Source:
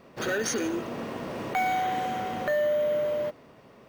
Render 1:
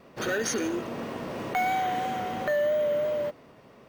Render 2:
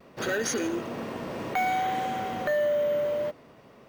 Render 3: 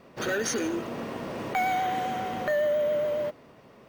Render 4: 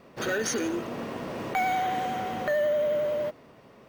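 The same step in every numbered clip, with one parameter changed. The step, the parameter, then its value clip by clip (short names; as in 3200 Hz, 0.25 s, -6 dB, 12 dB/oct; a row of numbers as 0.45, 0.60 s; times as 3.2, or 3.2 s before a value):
vibrato, rate: 3, 0.6, 7.3, 11 Hz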